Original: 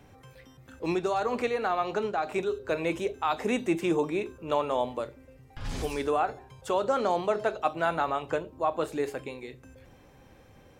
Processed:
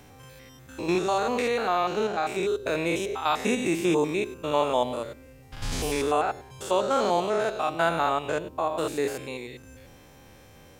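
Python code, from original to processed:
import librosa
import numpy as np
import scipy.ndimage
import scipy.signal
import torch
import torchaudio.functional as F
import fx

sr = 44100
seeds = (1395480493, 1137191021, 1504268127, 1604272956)

y = fx.spec_steps(x, sr, hold_ms=100)
y = fx.high_shelf(y, sr, hz=3200.0, db=9.5)
y = y * 10.0 ** (4.5 / 20.0)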